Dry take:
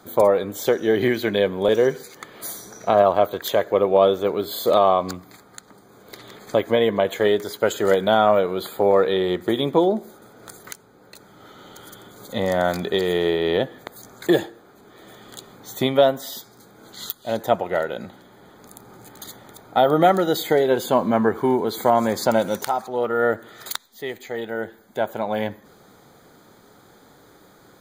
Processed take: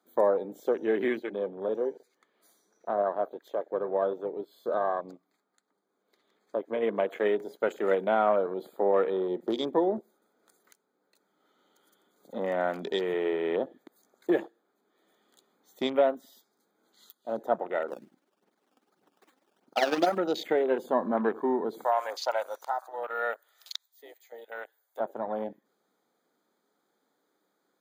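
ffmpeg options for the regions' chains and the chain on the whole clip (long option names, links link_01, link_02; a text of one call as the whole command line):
ffmpeg -i in.wav -filter_complex "[0:a]asettb=1/sr,asplit=3[link_01][link_02][link_03];[link_01]atrim=end=1.194[link_04];[link_02]atrim=start=1.19:end=6.83,asetpts=PTS-STARTPTS,afade=type=in:duration=0.004:curve=qsin,afade=type=out:start_time=5.636:duration=0.004:curve=qsin,highshelf=frequency=8900:gain=-7.5,flanger=delay=1.9:depth=3.1:regen=-79:speed=1.3:shape=sinusoidal[link_05];[link_03]atrim=start=6.826[link_06];[link_04][link_05]acrossfade=duration=0.004:curve1=hsin:curve2=qsin[link_07];[link_07][link_06]acrossfade=duration=0.004:curve1=qsin:curve2=hsin,asettb=1/sr,asplit=3[link_08][link_09][link_10];[link_08]atrim=end=17.884[link_11];[link_09]atrim=start=17.88:end=20.18,asetpts=PTS-STARTPTS,afade=type=in:duration=0.004:curve=qsin,afade=type=out:start_time=2.296:duration=0.004:curve=qsin,tremolo=f=20:d=0.63,acrusher=samples=15:mix=1:aa=0.000001:lfo=1:lforange=15:lforate=2.6,aphaser=in_gain=1:out_gain=1:delay=3.9:decay=0.46:speed=1.7:type=sinusoidal[link_12];[link_10]atrim=start=20.176[link_13];[link_11][link_12]acrossfade=duration=0.004:curve1=hsin:curve2=qsin[link_14];[link_14][link_13]acrossfade=duration=0.004:curve1=qsin:curve2=hsin,asettb=1/sr,asplit=3[link_15][link_16][link_17];[link_15]atrim=end=21.844[link_18];[link_16]atrim=start=21.84:end=25,asetpts=PTS-STARTPTS,afade=type=in:duration=0.004:curve=qsin,afade=type=out:start_time=3.156:duration=0.004:curve=qsin,highpass=frequency=580:width=0.5412,highpass=frequency=580:width=1.3066,aemphasis=mode=production:type=50kf,acrossover=split=6300[link_19][link_20];[link_20]acompressor=threshold=-31dB:ratio=4:attack=1:release=60[link_21];[link_19][link_21]amix=inputs=2:normalize=0[link_22];[link_17]atrim=start=24.996[link_23];[link_18][link_22]acrossfade=duration=0.004:curve1=hsin:curve2=qsin[link_24];[link_24][link_23]acrossfade=duration=0.004:curve1=qsin:curve2=hsin,highpass=frequency=210:width=0.5412,highpass=frequency=210:width=1.3066,afwtdn=0.0316,volume=-7.5dB" out.wav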